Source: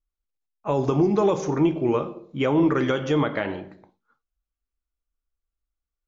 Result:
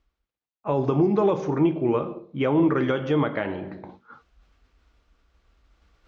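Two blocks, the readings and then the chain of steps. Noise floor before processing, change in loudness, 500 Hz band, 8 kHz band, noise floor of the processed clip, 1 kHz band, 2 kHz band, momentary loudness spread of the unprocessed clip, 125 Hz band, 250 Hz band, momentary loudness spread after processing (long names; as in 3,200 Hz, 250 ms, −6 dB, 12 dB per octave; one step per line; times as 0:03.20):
below −85 dBFS, −0.5 dB, −0.5 dB, can't be measured, below −85 dBFS, −1.0 dB, −1.5 dB, 11 LU, 0.0 dB, −0.5 dB, 14 LU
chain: reversed playback
upward compression, threshold −28 dBFS
reversed playback
high-pass filter 51 Hz
high-frequency loss of the air 190 metres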